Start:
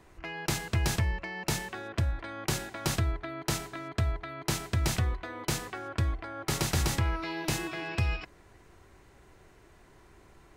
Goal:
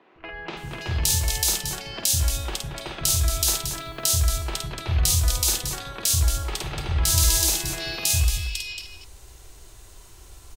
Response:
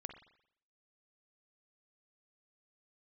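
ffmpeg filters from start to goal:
-filter_complex "[0:a]aexciter=amount=3.9:drive=6:freq=2.7k,asplit=2[a][b];[b]acompressor=threshold=-29dB:ratio=6,volume=-0.5dB[c];[a][c]amix=inputs=2:normalize=0,acrossover=split=220|2500[d][e][f];[d]adelay=150[g];[f]adelay=570[h];[g][e][h]amix=inputs=3:normalize=0,asettb=1/sr,asplit=3[i][j][k];[i]atrim=end=3.464[l];[j]atrim=start=3.46:end=4.11,asetpts=PTS-STARTPTS,afade=t=in:d=0.004:c=qsin,afade=t=out:st=0.646:d=0.004:c=qsin,acrusher=bits=9:dc=4:mix=0:aa=0.000001[m];[k]atrim=start=4.106[n];[l][m]acrossfade=d=0.004:c1=hsin:c2=qsin[o];[o][n]acrossfade=d=0.004:c1=qsin:c2=hsin,asplit=2[p][q];[q]aecho=0:1:50|227:0.631|0.398[r];[p][r]amix=inputs=2:normalize=0,asubboost=boost=3.5:cutoff=85,volume=-3.5dB"

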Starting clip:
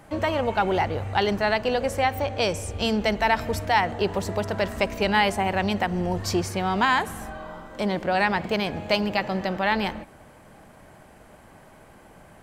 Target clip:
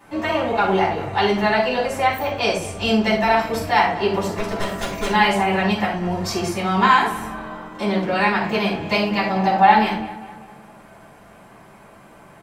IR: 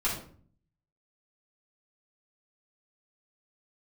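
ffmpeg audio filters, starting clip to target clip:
-filter_complex "[0:a]highpass=f=190:p=1,asettb=1/sr,asplit=3[a][b][c];[a]atrim=end=4.344[d];[b]atrim=start=4.34:end=5.06,asetpts=PTS-STARTPTS,afade=t=in:d=0.004:c=qsin,afade=t=out:st=0.716:d=0.004:c=qsin,aeval=exprs='0.0708*(abs(mod(val(0)/0.0708+3,4)-2)-1)':c=same[e];[c]atrim=start=5.056[f];[d][e]acrossfade=d=0.004:c1=hsin:c2=qsin[g];[g][f]acrossfade=d=0.004:c1=qsin:c2=hsin,asettb=1/sr,asplit=3[h][i][j];[h]atrim=end=9.324[k];[i]atrim=start=9.32:end=9.72,asetpts=PTS-STARTPTS,afade=t=in:d=0.004:c=qsin,afade=t=out:st=0.396:d=0.004:c=qsin,equalizer=f=790:w=5:g=14[l];[j]atrim=start=9.716[m];[k][l]acrossfade=d=0.004:c1=hsin:c2=qsin[n];[n][m]acrossfade=d=0.004:c1=qsin:c2=hsin,asplit=2[o][p];[p]adelay=200,lowpass=f=3.8k:p=1,volume=-16dB,asplit=2[q][r];[r]adelay=200,lowpass=f=3.8k:p=1,volume=0.53,asplit=2[s][t];[t]adelay=200,lowpass=f=3.8k:p=1,volume=0.53,asplit=2[u][v];[v]adelay=200,lowpass=f=3.8k:p=1,volume=0.53,asplit=2[w][x];[x]adelay=200,lowpass=f=3.8k:p=1,volume=0.53[y];[o][q][s][u][w][y]amix=inputs=6:normalize=0[z];[1:a]atrim=start_sample=2205,afade=t=out:st=0.18:d=0.01,atrim=end_sample=8379[aa];[z][aa]afir=irnorm=-1:irlink=0,volume=-3dB"

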